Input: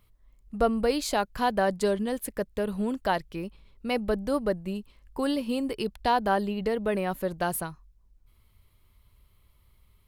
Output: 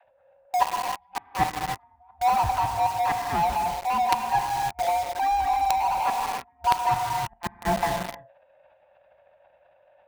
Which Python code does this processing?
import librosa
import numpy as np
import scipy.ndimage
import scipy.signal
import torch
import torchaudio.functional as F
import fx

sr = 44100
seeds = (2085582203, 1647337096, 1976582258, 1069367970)

p1 = fx.band_swap(x, sr, width_hz=500)
p2 = scipy.signal.sosfilt(scipy.signal.butter(4, 45.0, 'highpass', fs=sr, output='sos'), p1)
p3 = fx.tilt_eq(p2, sr, slope=-2.0)
p4 = fx.dispersion(p3, sr, late='lows', ms=53.0, hz=330.0)
p5 = p4 + fx.echo_single(p4, sr, ms=208, db=-5.5, dry=0)
p6 = fx.transient(p5, sr, attack_db=-3, sustain_db=8)
p7 = fx.gate_flip(p6, sr, shuts_db=-16.0, range_db=-41)
p8 = scipy.signal.sosfilt(scipy.signal.butter(4, 2600.0, 'lowpass', fs=sr, output='sos'), p7)
p9 = fx.low_shelf_res(p8, sr, hz=620.0, db=-7.0, q=3.0)
p10 = fx.rev_gated(p9, sr, seeds[0], gate_ms=350, shape='flat', drr_db=6.0)
p11 = fx.quant_companded(p10, sr, bits=2)
p12 = p10 + (p11 * 10.0 ** (-4.0 / 20.0))
p13 = fx.rider(p12, sr, range_db=4, speed_s=0.5)
y = p13 * 10.0 ** (-1.0 / 20.0)